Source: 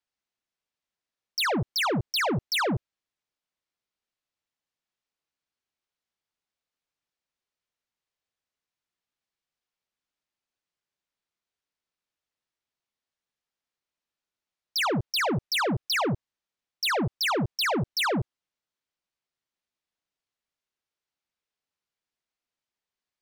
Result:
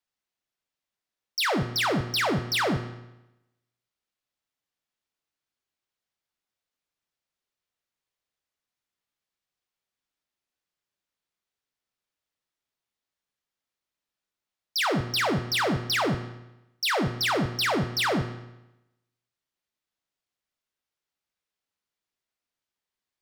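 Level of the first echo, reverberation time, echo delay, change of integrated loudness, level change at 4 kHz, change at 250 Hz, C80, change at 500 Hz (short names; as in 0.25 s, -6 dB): none, 0.95 s, none, +0.5 dB, +0.5 dB, +1.0 dB, 13.0 dB, +1.0 dB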